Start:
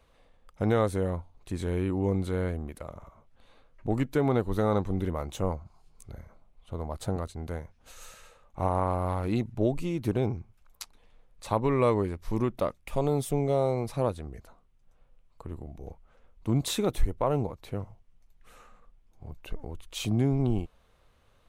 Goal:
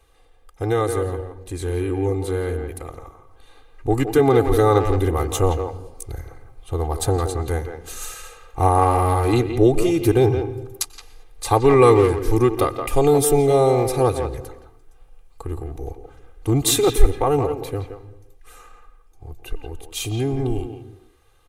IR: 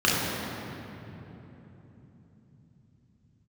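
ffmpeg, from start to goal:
-filter_complex "[0:a]equalizer=f=11k:w=0.63:g=9,aecho=1:1:2.5:0.99,dynaudnorm=f=240:g=31:m=8.5dB,asplit=2[a][b];[b]adelay=170,highpass=300,lowpass=3.4k,asoftclip=type=hard:threshold=-12dB,volume=-7dB[c];[a][c]amix=inputs=2:normalize=0,asplit=2[d][e];[1:a]atrim=start_sample=2205,afade=t=out:st=0.37:d=0.01,atrim=end_sample=16758,adelay=89[f];[e][f]afir=irnorm=-1:irlink=0,volume=-34dB[g];[d][g]amix=inputs=2:normalize=0,volume=1dB"

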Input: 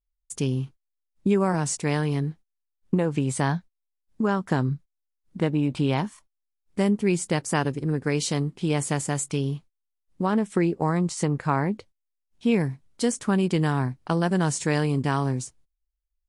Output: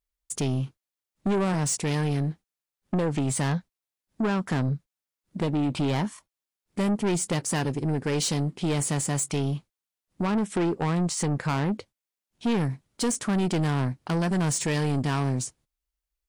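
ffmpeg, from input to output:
-af "highpass=f=93:p=1,asoftclip=type=tanh:threshold=-25.5dB,volume=4.5dB"

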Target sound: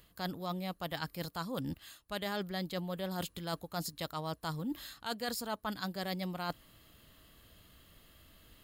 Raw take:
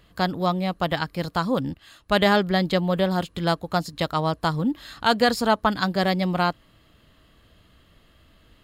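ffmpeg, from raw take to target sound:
-af "aemphasis=mode=production:type=50fm,areverse,acompressor=threshold=-30dB:ratio=6,areverse,volume=-5dB"

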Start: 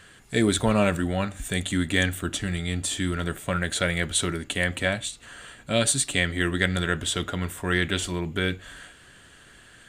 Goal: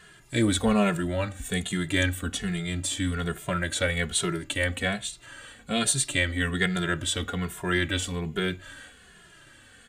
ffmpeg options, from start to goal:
-filter_complex "[0:a]asplit=2[a][b];[b]adelay=2.4,afreqshift=-1.2[c];[a][c]amix=inputs=2:normalize=1,volume=1.5dB"

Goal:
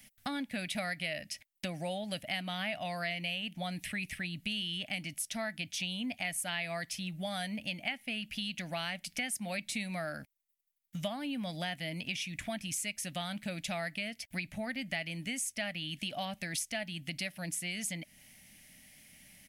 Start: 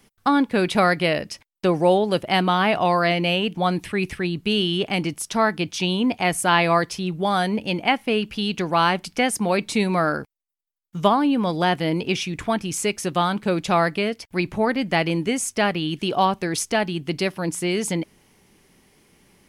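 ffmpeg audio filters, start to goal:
-af "firequalizer=gain_entry='entry(260,0);entry(400,-21);entry(610,3);entry(1000,-13);entry(1900,8);entry(4600,5);entry(12000,12)':delay=0.05:min_phase=1,acompressor=threshold=-33dB:ratio=3,volume=-5dB"

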